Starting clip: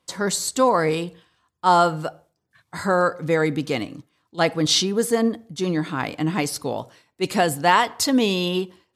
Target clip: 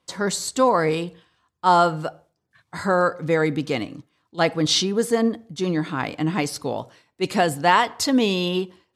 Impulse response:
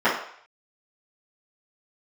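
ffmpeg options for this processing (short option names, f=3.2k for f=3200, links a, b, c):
-af "highshelf=f=11k:g=-10.5"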